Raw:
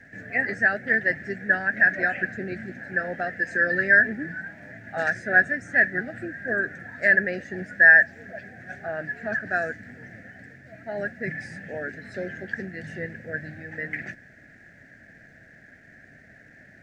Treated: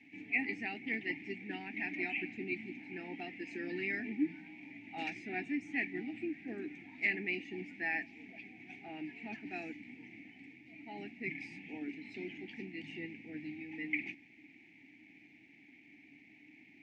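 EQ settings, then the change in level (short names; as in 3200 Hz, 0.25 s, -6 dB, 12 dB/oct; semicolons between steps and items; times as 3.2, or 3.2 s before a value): vowel filter u; resonant high shelf 2000 Hz +11 dB, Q 3; notch 550 Hz, Q 12; +4.0 dB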